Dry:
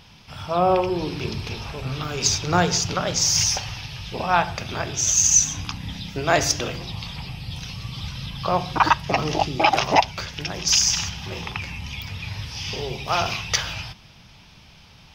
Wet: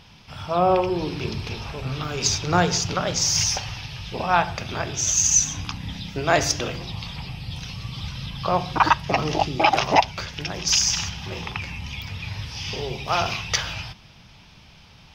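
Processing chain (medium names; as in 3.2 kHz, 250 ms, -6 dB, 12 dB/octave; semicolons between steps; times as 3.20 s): treble shelf 7.8 kHz -5 dB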